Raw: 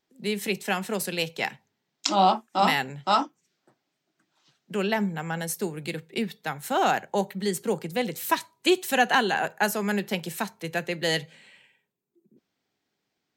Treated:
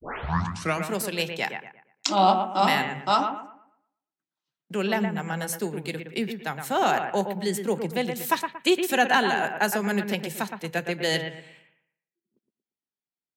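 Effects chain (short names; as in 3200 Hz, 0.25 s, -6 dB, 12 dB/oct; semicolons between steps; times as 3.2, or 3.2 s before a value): tape start at the beginning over 0.86 s; gate -55 dBFS, range -23 dB; analogue delay 0.116 s, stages 2048, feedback 32%, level -7 dB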